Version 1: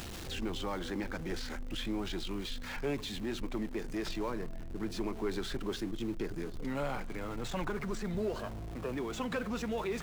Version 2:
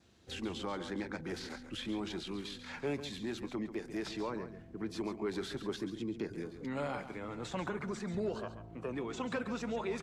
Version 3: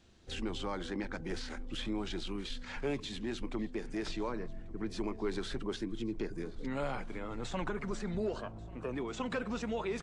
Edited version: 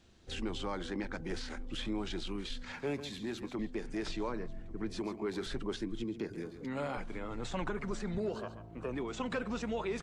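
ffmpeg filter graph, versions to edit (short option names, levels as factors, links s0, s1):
-filter_complex "[1:a]asplit=4[s0][s1][s2][s3];[2:a]asplit=5[s4][s5][s6][s7][s8];[s4]atrim=end=2.722[s9];[s0]atrim=start=2.718:end=3.592[s10];[s5]atrim=start=3.588:end=4.992[s11];[s1]atrim=start=4.988:end=5.462[s12];[s6]atrim=start=5.458:end=6.042[s13];[s2]atrim=start=6.038:end=6.972[s14];[s7]atrim=start=6.968:end=8.182[s15];[s3]atrim=start=8.178:end=8.772[s16];[s8]atrim=start=8.768[s17];[s9][s10]acrossfade=d=0.004:c1=hsin:c2=hsin[s18];[s18][s11]acrossfade=d=0.004:c1=hsin:c2=hsin[s19];[s19][s12]acrossfade=d=0.004:c1=hsin:c2=hsin[s20];[s20][s13]acrossfade=d=0.004:c1=hsin:c2=hsin[s21];[s21][s14]acrossfade=d=0.004:c1=hsin:c2=hsin[s22];[s22][s15]acrossfade=d=0.004:c1=hsin:c2=hsin[s23];[s23][s16]acrossfade=d=0.004:c1=hsin:c2=hsin[s24];[s24][s17]acrossfade=d=0.004:c1=hsin:c2=hsin"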